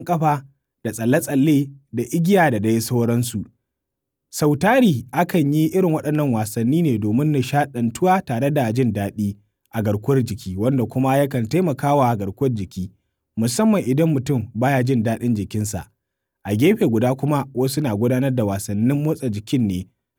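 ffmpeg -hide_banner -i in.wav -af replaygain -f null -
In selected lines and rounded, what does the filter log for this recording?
track_gain = +0.7 dB
track_peak = 0.402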